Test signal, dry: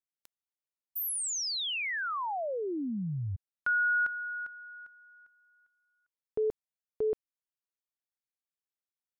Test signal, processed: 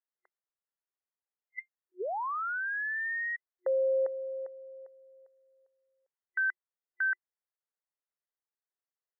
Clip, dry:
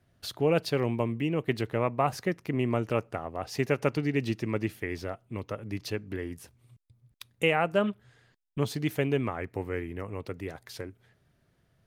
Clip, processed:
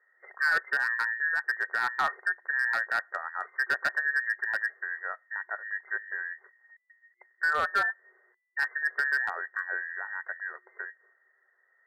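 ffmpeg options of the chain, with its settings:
ffmpeg -i in.wav -af "afftfilt=real='real(if(between(b,1,1012),(2*floor((b-1)/92)+1)*92-b,b),0)':imag='imag(if(between(b,1,1012),(2*floor((b-1)/92)+1)*92-b,b),0)*if(between(b,1,1012),-1,1)':win_size=2048:overlap=0.75,afftfilt=real='re*between(b*sr/4096,360,2100)':imag='im*between(b*sr/4096,360,2100)':win_size=4096:overlap=0.75,volume=20dB,asoftclip=hard,volume=-20dB" out.wav

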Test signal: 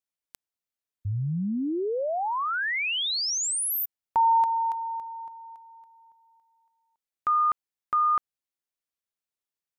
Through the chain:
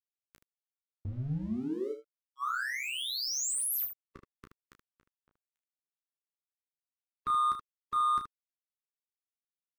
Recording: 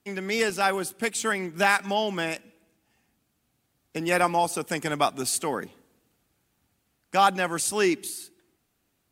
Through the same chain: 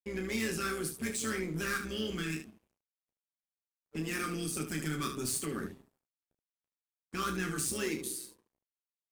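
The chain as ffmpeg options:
ffmpeg -i in.wav -filter_complex "[0:a]afftfilt=real='re*(1-between(b*sr/4096,450,1100))':imag='im*(1-between(b*sr/4096,450,1100))':win_size=4096:overlap=0.75,tiltshelf=frequency=720:gain=7.5,acrossover=split=1300[link_01][link_02];[link_01]acompressor=threshold=-32dB:ratio=10:attack=0.85:release=21:knee=1:detection=peak[link_03];[link_02]asoftclip=type=hard:threshold=-35dB[link_04];[link_03][link_04]amix=inputs=2:normalize=0,tremolo=f=130:d=0.519,aeval=exprs='sgn(val(0))*max(abs(val(0))-0.00112,0)':channel_layout=same,asplit=2[link_05][link_06];[link_06]aecho=0:1:13|32|76:0.447|0.447|0.376[link_07];[link_05][link_07]amix=inputs=2:normalize=0,adynamicequalizer=threshold=0.00251:dfrequency=4400:dqfactor=0.7:tfrequency=4400:tqfactor=0.7:attack=5:release=100:ratio=0.375:range=3:mode=boostabove:tftype=highshelf" out.wav

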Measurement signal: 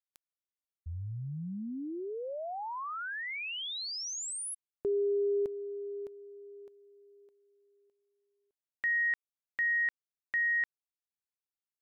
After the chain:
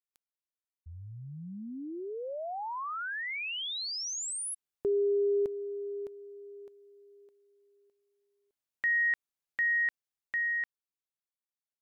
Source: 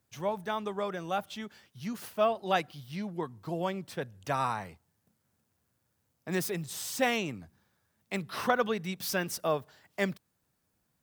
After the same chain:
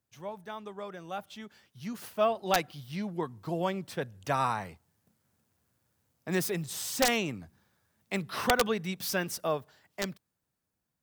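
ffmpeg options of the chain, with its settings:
ffmpeg -i in.wav -af "aeval=exprs='(mod(5.62*val(0)+1,2)-1)/5.62':channel_layout=same,dynaudnorm=framelen=280:gausssize=13:maxgain=10dB,volume=-8dB" out.wav

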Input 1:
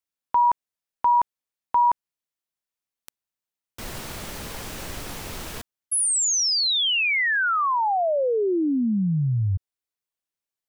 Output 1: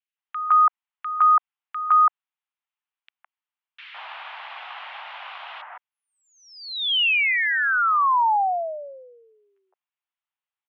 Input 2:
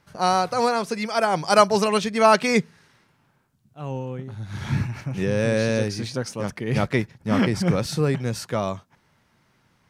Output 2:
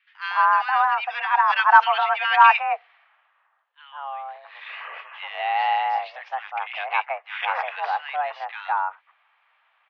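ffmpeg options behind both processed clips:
ffmpeg -i in.wav -filter_complex "[0:a]highpass=frequency=500:width_type=q:width=0.5412,highpass=frequency=500:width_type=q:width=1.307,lowpass=frequency=2900:width_type=q:width=0.5176,lowpass=frequency=2900:width_type=q:width=0.7071,lowpass=frequency=2900:width_type=q:width=1.932,afreqshift=280,acrossover=split=1800[link_01][link_02];[link_01]adelay=160[link_03];[link_03][link_02]amix=inputs=2:normalize=0,volume=4.5dB" out.wav

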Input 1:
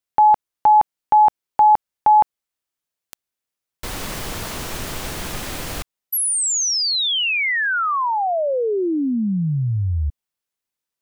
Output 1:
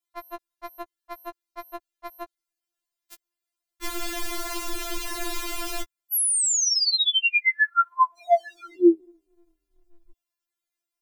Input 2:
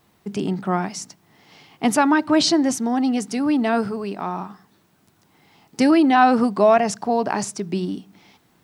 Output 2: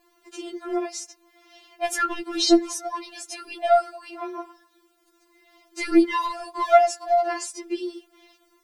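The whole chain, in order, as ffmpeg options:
ffmpeg -i in.wav -filter_complex "[0:a]acrossover=split=340|920[link_01][link_02][link_03];[link_02]asoftclip=type=hard:threshold=-22.5dB[link_04];[link_01][link_04][link_03]amix=inputs=3:normalize=0,afftfilt=real='re*4*eq(mod(b,16),0)':imag='im*4*eq(mod(b,16),0)':win_size=2048:overlap=0.75" out.wav

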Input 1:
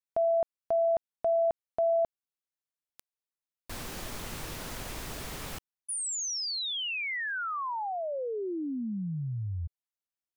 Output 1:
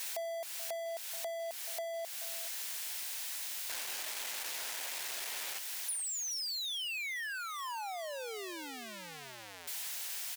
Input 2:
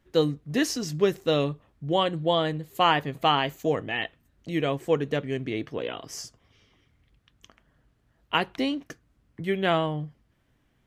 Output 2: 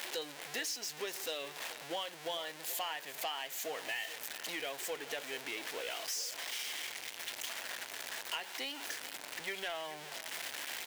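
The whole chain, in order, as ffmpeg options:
ffmpeg -i in.wav -filter_complex "[0:a]aeval=exprs='val(0)+0.5*0.0376*sgn(val(0))':channel_layout=same,highpass=950,equalizer=frequency=1200:width_type=o:width=0.53:gain=-8,acompressor=threshold=-38dB:ratio=6:attack=91:release=253:knee=1:detection=rms,asoftclip=type=tanh:threshold=-28.5dB,asplit=2[link_01][link_02];[link_02]aecho=0:1:430:0.178[link_03];[link_01][link_03]amix=inputs=2:normalize=0" out.wav

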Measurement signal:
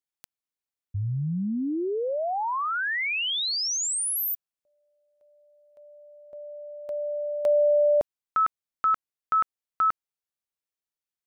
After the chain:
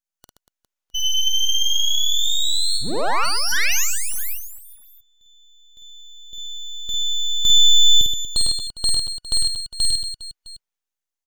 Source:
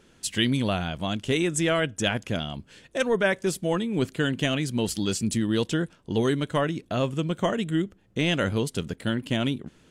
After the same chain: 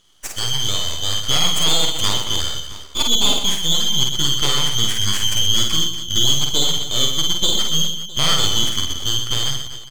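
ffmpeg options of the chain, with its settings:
ffmpeg -i in.wav -filter_complex "[0:a]afftfilt=real='real(if(lt(b,272),68*(eq(floor(b/68),0)*1+eq(floor(b/68),1)*3+eq(floor(b/68),2)*0+eq(floor(b/68),3)*2)+mod(b,68),b),0)':imag='imag(if(lt(b,272),68*(eq(floor(b/68),0)*1+eq(floor(b/68),1)*3+eq(floor(b/68),2)*0+eq(floor(b/68),3)*2)+mod(b,68),b),0)':win_size=2048:overlap=0.75,highpass=frequency=490:poles=1,equalizer=frequency=6500:width_type=o:width=0.34:gain=7,acrossover=split=4000[link_01][link_02];[link_01]dynaudnorm=framelen=130:gausssize=11:maxgain=9dB[link_03];[link_03][link_02]amix=inputs=2:normalize=0,aeval=exprs='max(val(0),0)':channel_layout=same,asplit=2[link_04][link_05];[link_05]aecho=0:1:50|125|237.5|406.2|659.4:0.631|0.398|0.251|0.158|0.1[link_06];[link_04][link_06]amix=inputs=2:normalize=0,volume=2dB" out.wav

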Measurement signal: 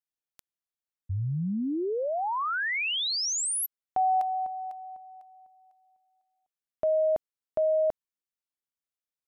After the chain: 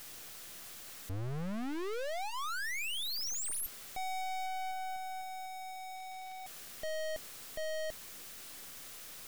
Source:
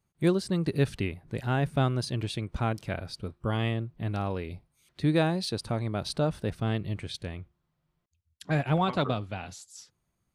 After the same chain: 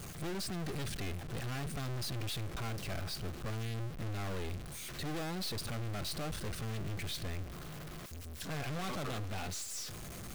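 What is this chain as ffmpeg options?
ffmpeg -i in.wav -af "aeval=exprs='val(0)+0.5*0.0119*sgn(val(0))':channel_layout=same,aeval=exprs='(tanh(112*val(0)+0.75)-tanh(0.75))/112':channel_layout=same,bandreject=frequency=920:width=9.1,volume=3.5dB" out.wav

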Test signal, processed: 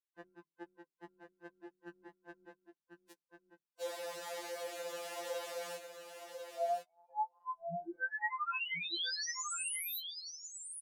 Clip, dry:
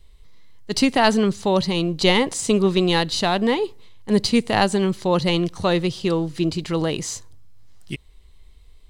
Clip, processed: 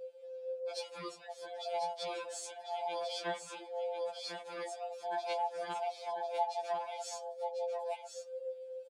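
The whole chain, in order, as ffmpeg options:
ffmpeg -i in.wav -filter_complex "[0:a]afftfilt=real='real(if(lt(b,1008),b+24*(1-2*mod(floor(b/24),2)),b),0)':imag='imag(if(lt(b,1008),b+24*(1-2*mod(floor(b/24),2)),b),0)':win_size=2048:overlap=0.75,bandpass=frequency=390:width_type=q:width=0.94:csg=0,aderivative,acontrast=74,alimiter=level_in=9dB:limit=-24dB:level=0:latency=1:release=22,volume=-9dB,acompressor=threshold=-47dB:ratio=3,bandreject=frequency=50:width_type=h:width=6,bandreject=frequency=100:width_type=h:width=6,bandreject=frequency=150:width_type=h:width=6,bandreject=frequency=200:width_type=h:width=6,bandreject=frequency=250:width_type=h:width=6,bandreject=frequency=300:width_type=h:width=6,flanger=delay=1.8:depth=3.3:regen=14:speed=1.3:shape=sinusoidal,asplit=2[link_01][link_02];[link_02]aecho=0:1:1046:0.447[link_03];[link_01][link_03]amix=inputs=2:normalize=0,afftfilt=real='re*2.83*eq(mod(b,8),0)':imag='im*2.83*eq(mod(b,8),0)':win_size=2048:overlap=0.75,volume=12dB" out.wav

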